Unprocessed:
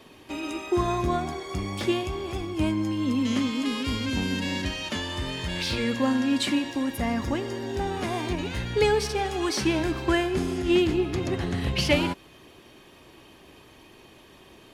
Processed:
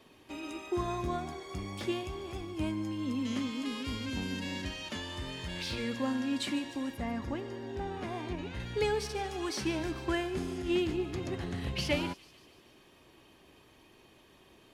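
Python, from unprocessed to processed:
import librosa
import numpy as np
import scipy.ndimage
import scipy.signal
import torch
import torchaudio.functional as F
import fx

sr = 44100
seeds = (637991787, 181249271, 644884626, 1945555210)

y = fx.high_shelf(x, sr, hz=5000.0, db=-11.5, at=(6.94, 8.6))
y = fx.echo_wet_highpass(y, sr, ms=146, feedback_pct=63, hz=4300.0, wet_db=-14.0)
y = y * librosa.db_to_amplitude(-8.5)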